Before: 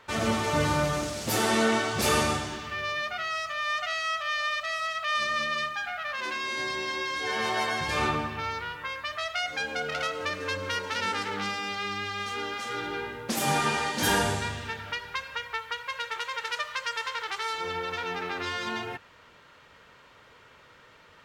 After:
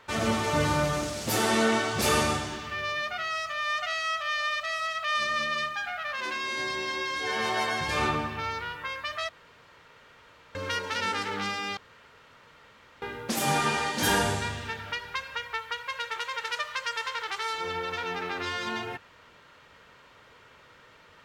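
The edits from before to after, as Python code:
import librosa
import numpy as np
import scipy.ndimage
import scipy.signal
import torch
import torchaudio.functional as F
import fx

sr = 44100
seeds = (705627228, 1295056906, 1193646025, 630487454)

y = fx.edit(x, sr, fx.room_tone_fill(start_s=9.29, length_s=1.26),
    fx.room_tone_fill(start_s=11.77, length_s=1.25), tone=tone)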